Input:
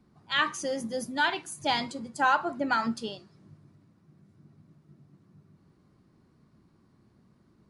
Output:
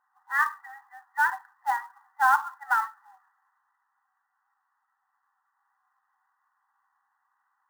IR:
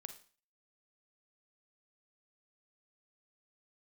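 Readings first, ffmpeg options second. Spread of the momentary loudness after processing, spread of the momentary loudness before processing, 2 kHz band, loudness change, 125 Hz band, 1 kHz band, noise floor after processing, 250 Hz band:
15 LU, 11 LU, +3.0 dB, +2.0 dB, under -20 dB, +3.0 dB, -77 dBFS, under -30 dB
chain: -af "afftfilt=real='re*between(b*sr/4096,750,2000)':imag='im*between(b*sr/4096,750,2000)':win_size=4096:overlap=0.75,acrusher=bits=5:mode=log:mix=0:aa=0.000001,volume=3dB"

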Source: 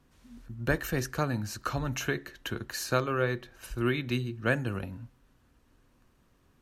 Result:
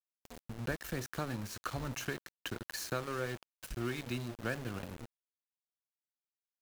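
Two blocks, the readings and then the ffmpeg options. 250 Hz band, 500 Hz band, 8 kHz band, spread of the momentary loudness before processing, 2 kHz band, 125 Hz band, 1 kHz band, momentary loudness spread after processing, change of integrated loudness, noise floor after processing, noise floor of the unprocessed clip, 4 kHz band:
-8.0 dB, -9.0 dB, -5.0 dB, 10 LU, -8.5 dB, -8.5 dB, -8.0 dB, 10 LU, -8.0 dB, under -85 dBFS, -66 dBFS, -5.5 dB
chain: -af "acompressor=threshold=-54dB:ratio=2,aeval=exprs='val(0)*gte(abs(val(0)),0.00398)':c=same,volume=7dB"

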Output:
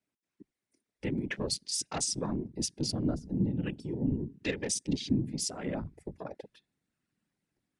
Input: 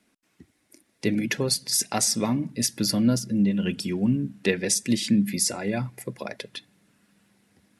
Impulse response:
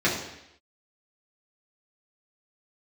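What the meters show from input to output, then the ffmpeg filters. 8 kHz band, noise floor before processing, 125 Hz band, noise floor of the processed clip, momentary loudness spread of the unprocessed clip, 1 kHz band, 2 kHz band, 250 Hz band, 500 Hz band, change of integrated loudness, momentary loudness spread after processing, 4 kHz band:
-9.5 dB, -70 dBFS, -6.0 dB, under -85 dBFS, 13 LU, -8.5 dB, -9.5 dB, -9.0 dB, -8.0 dB, -8.5 dB, 11 LU, -8.5 dB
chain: -filter_complex "[0:a]afftfilt=real='hypot(re,im)*cos(2*PI*random(0))':imag='hypot(re,im)*sin(2*PI*random(1))':win_size=512:overlap=0.75,asplit=2[a][b];[b]acompressor=threshold=-40dB:ratio=6,volume=-2dB[c];[a][c]amix=inputs=2:normalize=0,afwtdn=0.0112,aresample=22050,aresample=44100,volume=-3.5dB"

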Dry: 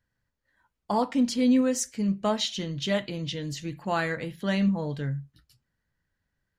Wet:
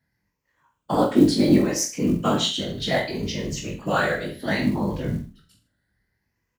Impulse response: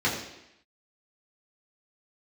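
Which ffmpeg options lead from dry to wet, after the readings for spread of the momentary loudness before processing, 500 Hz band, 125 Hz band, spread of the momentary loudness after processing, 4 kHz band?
11 LU, +5.5 dB, +4.5 dB, 11 LU, +5.5 dB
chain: -filter_complex "[0:a]afftfilt=real='re*pow(10,10/40*sin(2*PI*(0.77*log(max(b,1)*sr/1024/100)/log(2)-(0.66)*(pts-256)/sr)))':imag='im*pow(10,10/40*sin(2*PI*(0.77*log(max(b,1)*sr/1024/100)/log(2)-(0.66)*(pts-256)/sr)))':win_size=1024:overlap=0.75,afftfilt=real='hypot(re,im)*cos(2*PI*random(0))':imag='hypot(re,im)*sin(2*PI*random(1))':win_size=512:overlap=0.75,afreqshift=25,acrusher=bits=8:mode=log:mix=0:aa=0.000001,asplit=2[a][b];[b]adelay=46,volume=-11dB[c];[a][c]amix=inputs=2:normalize=0,aecho=1:1:20|44|72.8|107.4|148.8:0.631|0.398|0.251|0.158|0.1,volume=7.5dB"

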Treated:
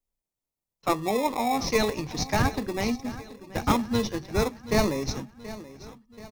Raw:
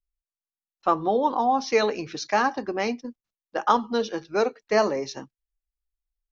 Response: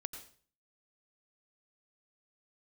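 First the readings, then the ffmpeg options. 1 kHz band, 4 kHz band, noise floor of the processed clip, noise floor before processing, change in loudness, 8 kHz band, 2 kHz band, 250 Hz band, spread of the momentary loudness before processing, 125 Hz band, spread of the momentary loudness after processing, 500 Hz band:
-5.0 dB, +2.0 dB, under -85 dBFS, under -85 dBFS, -2.5 dB, n/a, -2.0 dB, +2.5 dB, 11 LU, +12.5 dB, 16 LU, -4.0 dB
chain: -filter_complex "[0:a]bass=f=250:g=-4,treble=f=4k:g=9,aecho=1:1:729|1458|2187|2916:0.15|0.0748|0.0374|0.0187,asplit=2[a][b];[b]acrusher=samples=29:mix=1:aa=0.000001,volume=-3.5dB[c];[a][c]amix=inputs=2:normalize=0,asubboost=boost=6.5:cutoff=200,volume=-4.5dB"

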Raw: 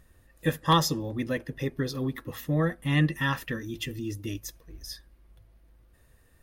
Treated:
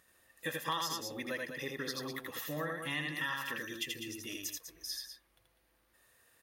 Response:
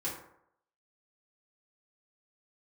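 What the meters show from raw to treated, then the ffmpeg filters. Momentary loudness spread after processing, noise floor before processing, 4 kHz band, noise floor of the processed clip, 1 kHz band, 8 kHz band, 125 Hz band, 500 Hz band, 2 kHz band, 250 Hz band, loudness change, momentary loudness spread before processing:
6 LU, -61 dBFS, -4.5 dB, -73 dBFS, -10.0 dB, -2.5 dB, -20.0 dB, -9.5 dB, -3.5 dB, -14.0 dB, -9.5 dB, 18 LU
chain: -af "highpass=f=1.1k:p=1,aecho=1:1:81.63|198.3:0.708|0.316,acompressor=threshold=-34dB:ratio=4"

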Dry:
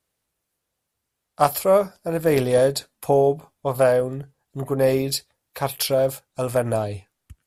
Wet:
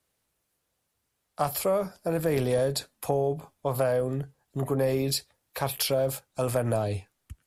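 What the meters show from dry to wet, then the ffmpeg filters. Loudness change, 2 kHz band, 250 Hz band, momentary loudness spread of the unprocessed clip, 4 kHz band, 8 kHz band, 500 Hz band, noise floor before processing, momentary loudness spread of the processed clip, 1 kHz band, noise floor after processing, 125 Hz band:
-6.5 dB, -6.5 dB, -4.5 dB, 11 LU, -3.5 dB, -3.5 dB, -7.5 dB, -80 dBFS, 8 LU, -8.0 dB, -79 dBFS, -2.5 dB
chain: -filter_complex "[0:a]acrossover=split=150[a][b];[b]acompressor=threshold=-20dB:ratio=6[c];[a][c]amix=inputs=2:normalize=0,asplit=2[d][e];[e]alimiter=limit=-23.5dB:level=0:latency=1:release=14,volume=1dB[f];[d][f]amix=inputs=2:normalize=0,volume=-5.5dB"

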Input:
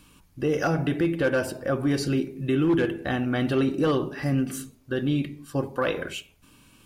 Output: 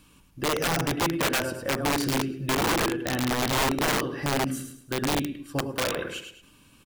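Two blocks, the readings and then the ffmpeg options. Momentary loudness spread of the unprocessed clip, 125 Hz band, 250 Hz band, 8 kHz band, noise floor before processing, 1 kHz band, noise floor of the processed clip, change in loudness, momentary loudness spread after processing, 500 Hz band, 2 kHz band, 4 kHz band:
8 LU, -3.5 dB, -4.0 dB, +10.5 dB, -58 dBFS, +5.5 dB, -57 dBFS, -0.5 dB, 8 LU, -3.0 dB, +3.0 dB, +8.0 dB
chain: -af "aecho=1:1:105|210|315|420:0.447|0.147|0.0486|0.0161,aeval=exprs='(mod(7.5*val(0)+1,2)-1)/7.5':c=same,volume=-2dB"

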